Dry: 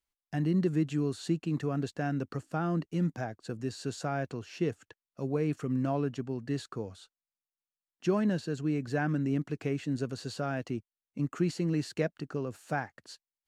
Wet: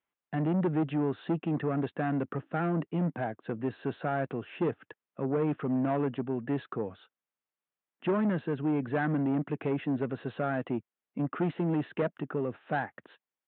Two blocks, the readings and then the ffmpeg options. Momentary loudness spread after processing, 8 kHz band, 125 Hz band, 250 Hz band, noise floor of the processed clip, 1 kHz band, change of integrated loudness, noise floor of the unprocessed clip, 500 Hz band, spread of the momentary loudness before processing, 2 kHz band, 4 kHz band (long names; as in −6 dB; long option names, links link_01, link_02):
8 LU, below −30 dB, −1.0 dB, +1.0 dB, below −85 dBFS, +3.5 dB, +1.0 dB, below −85 dBFS, +2.0 dB, 10 LU, +1.5 dB, −6.5 dB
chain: -af "aresample=8000,asoftclip=type=tanh:threshold=-29dB,aresample=44100,highpass=160,lowpass=2300,volume=6.5dB"